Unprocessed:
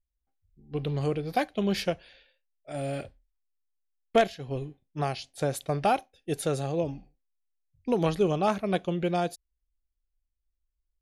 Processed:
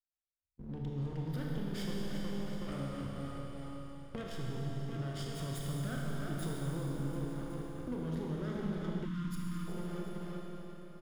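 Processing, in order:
lower of the sound and its delayed copy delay 0.58 ms
repeating echo 369 ms, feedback 55%, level −18 dB
noise gate −56 dBFS, range −40 dB
low-shelf EQ 430 Hz +11.5 dB
leveller curve on the samples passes 1
brickwall limiter −25.5 dBFS, peak gain reduction 20 dB
downward compressor 5 to 1, threshold −42 dBFS, peak gain reduction 12.5 dB
four-comb reverb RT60 4 s, combs from 25 ms, DRR −3 dB
gain on a spectral selection 0:09.05–0:09.68, 340–910 Hz −23 dB
level +1 dB

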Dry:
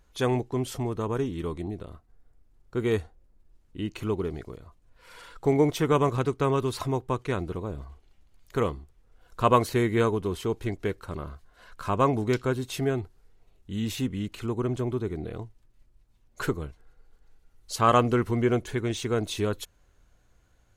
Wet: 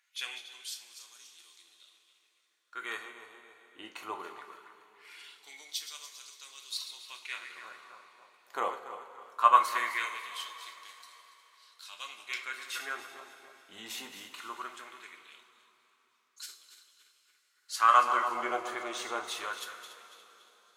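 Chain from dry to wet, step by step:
feedback delay that plays each chunk backwards 142 ms, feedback 59%, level −10 dB
auto-filter high-pass sine 0.2 Hz 800–4,900 Hz
coupled-rooms reverb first 0.27 s, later 3.8 s, from −18 dB, DRR 3.5 dB
level −5 dB

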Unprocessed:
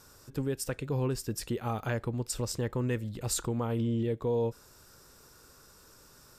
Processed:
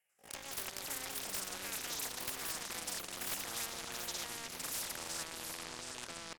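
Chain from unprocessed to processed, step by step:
noise gate −50 dBFS, range −29 dB
first difference
phaser with its sweep stopped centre 520 Hz, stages 6
echo ahead of the sound 61 ms −13.5 dB
pitch shifter +12 semitones
delay with pitch and tempo change per echo 94 ms, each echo −6 semitones, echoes 3
leveller curve on the samples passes 2
head-to-tape spacing loss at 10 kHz 20 dB
on a send: single-tap delay 719 ms −22 dB
on the sum: every bin compressed towards the loudest bin 4 to 1
level +11.5 dB

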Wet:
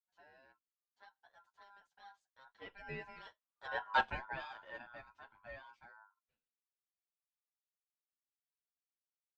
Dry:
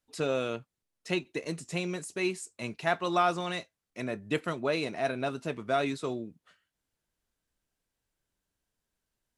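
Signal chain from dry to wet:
source passing by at 0:03.89, 30 m/s, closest 1.5 metres
ring modulation 1,200 Hz
high-frequency loss of the air 190 metres
barber-pole flanger 9 ms −2.1 Hz
level +12 dB

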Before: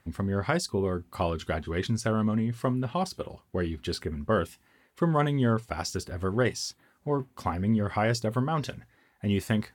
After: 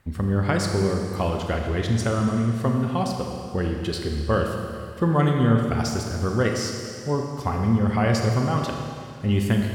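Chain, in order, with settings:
low-shelf EQ 83 Hz +10 dB
four-comb reverb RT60 2.4 s, combs from 27 ms, DRR 2 dB
level +2 dB

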